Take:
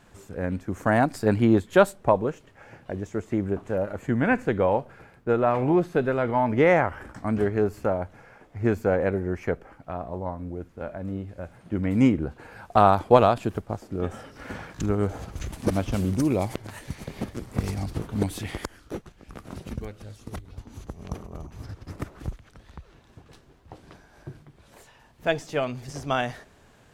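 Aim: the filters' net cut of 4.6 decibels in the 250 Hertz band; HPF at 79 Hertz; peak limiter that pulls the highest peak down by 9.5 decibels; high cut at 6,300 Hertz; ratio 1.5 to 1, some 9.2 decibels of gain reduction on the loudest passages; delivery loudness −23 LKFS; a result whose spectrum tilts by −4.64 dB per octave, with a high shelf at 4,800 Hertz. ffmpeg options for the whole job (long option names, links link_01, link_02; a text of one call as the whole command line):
ffmpeg -i in.wav -af "highpass=79,lowpass=6300,equalizer=frequency=250:width_type=o:gain=-6,highshelf=frequency=4800:gain=-5,acompressor=threshold=-38dB:ratio=1.5,volume=14dB,alimiter=limit=-8.5dB:level=0:latency=1" out.wav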